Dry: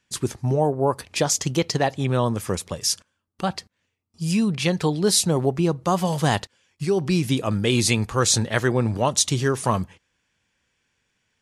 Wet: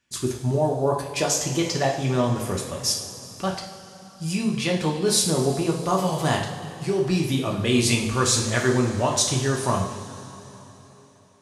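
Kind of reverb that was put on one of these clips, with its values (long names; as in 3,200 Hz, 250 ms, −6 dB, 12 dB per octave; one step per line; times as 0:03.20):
coupled-rooms reverb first 0.57 s, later 3.8 s, from −15 dB, DRR −1 dB
level −4 dB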